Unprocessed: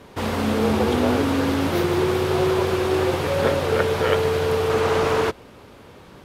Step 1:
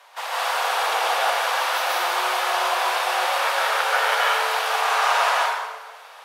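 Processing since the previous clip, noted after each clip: steep high-pass 670 Hz 36 dB/octave; plate-style reverb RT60 1.3 s, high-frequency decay 0.75×, pre-delay 120 ms, DRR -5.5 dB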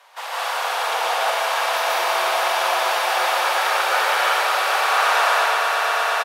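doubling 44 ms -12 dB; on a send: echo with a slow build-up 117 ms, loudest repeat 8, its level -11 dB; on the sum: trim -1 dB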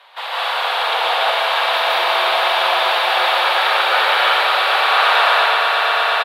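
resonant high shelf 4.8 kHz -8 dB, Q 3; trim +3 dB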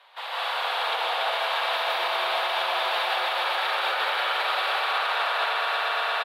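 peak limiter -8.5 dBFS, peak gain reduction 6.5 dB; trim -8 dB

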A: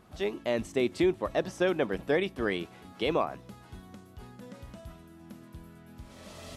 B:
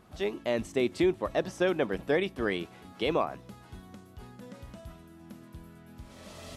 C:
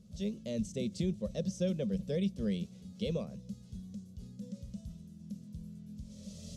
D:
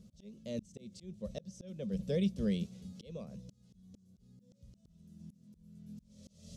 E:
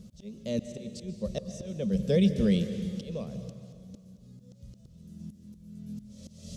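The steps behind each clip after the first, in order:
no audible change
FFT filter 120 Hz 0 dB, 210 Hz +8 dB, 300 Hz -20 dB, 530 Hz -4 dB, 770 Hz -27 dB, 1.7 kHz -24 dB, 3.4 kHz -8 dB, 6.2 kHz +2 dB, 12 kHz -10 dB
slow attack 476 ms; trim +1 dB
reverberation RT60 2.1 s, pre-delay 118 ms, DRR 9.5 dB; trim +8.5 dB

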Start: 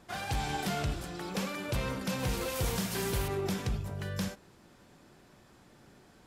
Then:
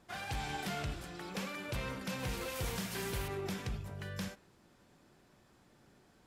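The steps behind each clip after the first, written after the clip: dynamic bell 2.1 kHz, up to +4 dB, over -54 dBFS, Q 0.87; trim -6.5 dB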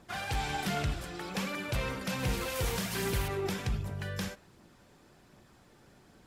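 phaser 1.3 Hz, delay 2.6 ms, feedback 26%; trim +5 dB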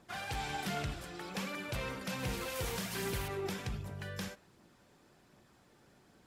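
bass shelf 75 Hz -7 dB; trim -4 dB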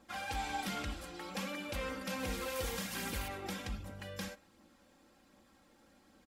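comb 3.7 ms, depth 77%; trim -2.5 dB

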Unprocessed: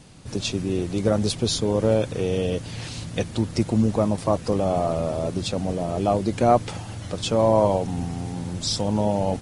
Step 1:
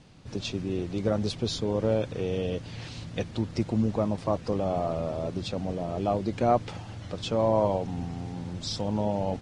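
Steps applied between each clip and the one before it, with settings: low-pass 5.2 kHz 12 dB/octave; trim -5.5 dB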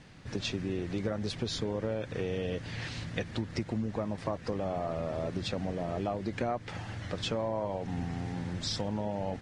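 peaking EQ 1.8 kHz +9 dB 0.69 oct; compression 6:1, threshold -29 dBFS, peak gain reduction 12 dB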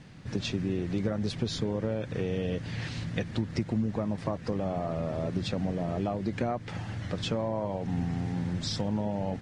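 peaking EQ 160 Hz +6 dB 1.7 oct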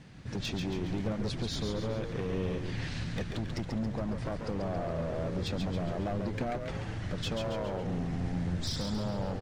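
overload inside the chain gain 27 dB; on a send: frequency-shifting echo 138 ms, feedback 54%, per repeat -90 Hz, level -5.5 dB; on the sum: trim -2 dB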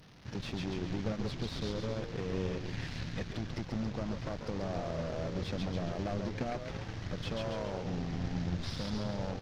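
one-bit delta coder 32 kbps, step -41 dBFS; power-law waveshaper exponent 1.4

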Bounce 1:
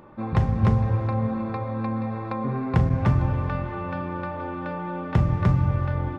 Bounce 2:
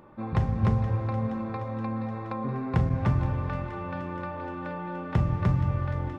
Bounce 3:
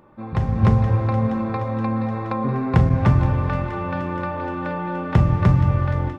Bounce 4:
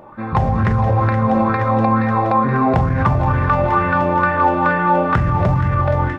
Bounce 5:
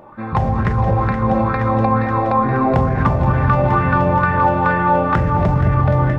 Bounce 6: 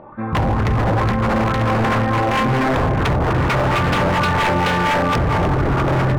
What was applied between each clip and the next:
feedback echo behind a high-pass 473 ms, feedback 71%, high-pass 1.7 kHz, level -11 dB; trim -4 dB
level rider gain up to 8.5 dB
peak limiter -16.5 dBFS, peak gain reduction 10 dB; sweeping bell 2.2 Hz 640–1800 Hz +13 dB; trim +6.5 dB
feedback echo behind a low-pass 214 ms, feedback 73%, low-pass 610 Hz, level -5 dB; trim -1 dB
distance through air 380 m; wavefolder -15 dBFS; trim +3 dB

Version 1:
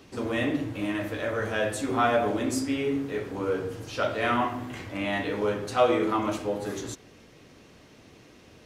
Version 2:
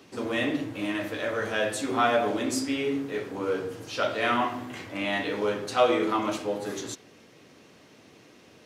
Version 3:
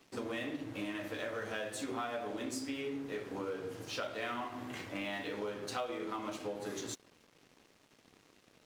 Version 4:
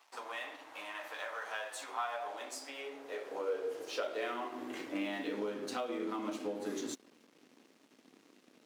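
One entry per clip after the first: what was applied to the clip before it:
dynamic bell 4.1 kHz, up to +4 dB, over -45 dBFS, Q 0.83; Bessel high-pass 160 Hz, order 2
compression 6:1, threshold -33 dBFS, peak gain reduction 16 dB; crossover distortion -53.5 dBFS; trim -2.5 dB
high-pass sweep 880 Hz -> 250 Hz, 2.06–5.38 s; trim -1.5 dB

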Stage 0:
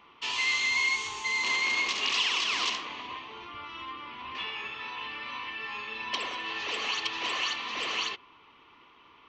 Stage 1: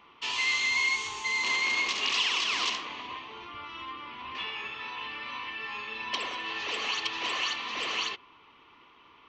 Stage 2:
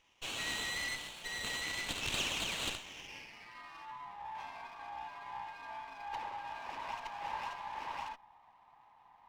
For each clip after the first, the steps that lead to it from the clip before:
no audible change
frequency shift -170 Hz; band-pass sweep 3.8 kHz -> 910 Hz, 2.83–4.17 s; sliding maximum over 5 samples; trim -1.5 dB

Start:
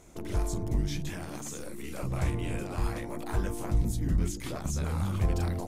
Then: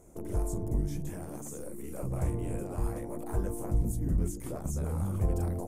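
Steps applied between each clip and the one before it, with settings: FFT filter 290 Hz 0 dB, 480 Hz +3 dB, 4 kHz -17 dB, 9 kHz +2 dB; trim -1.5 dB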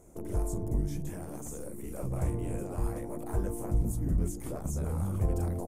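delay 1116 ms -18.5 dB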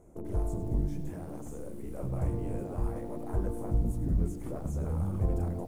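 treble shelf 2.4 kHz -11.5 dB; bit-crushed delay 99 ms, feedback 35%, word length 9-bit, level -12.5 dB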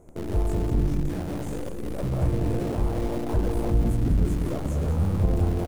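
in parallel at -11.5 dB: Schmitt trigger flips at -46.5 dBFS; on the sum: echo from a far wall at 34 m, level -7 dB; trim +5 dB

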